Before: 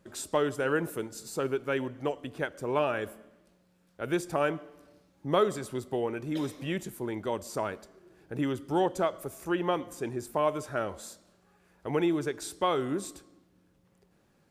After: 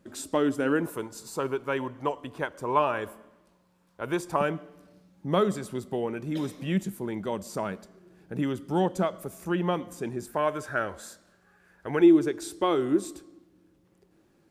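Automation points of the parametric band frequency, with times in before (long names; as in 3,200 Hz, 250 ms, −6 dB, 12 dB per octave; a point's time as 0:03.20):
parametric band +11.5 dB 0.4 octaves
270 Hz
from 0:00.86 1,000 Hz
from 0:04.41 190 Hz
from 0:10.28 1,600 Hz
from 0:12.01 330 Hz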